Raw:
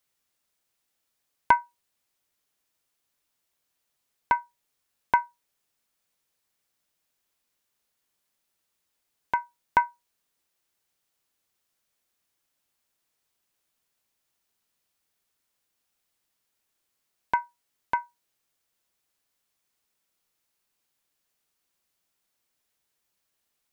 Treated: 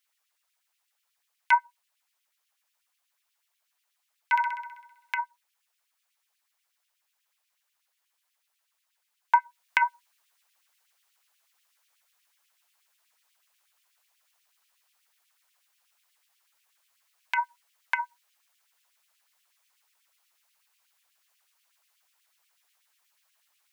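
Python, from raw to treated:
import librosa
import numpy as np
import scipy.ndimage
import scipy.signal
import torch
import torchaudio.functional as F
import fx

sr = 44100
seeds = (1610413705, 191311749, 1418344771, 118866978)

y = fx.filter_lfo_highpass(x, sr, shape='sine', hz=8.2, low_hz=730.0, high_hz=2800.0, q=2.1)
y = fx.rider(y, sr, range_db=10, speed_s=0.5)
y = fx.room_flutter(y, sr, wall_m=11.1, rt60_s=0.95, at=(4.35, 5.16), fade=0.02)
y = F.gain(torch.from_numpy(y), 3.0).numpy()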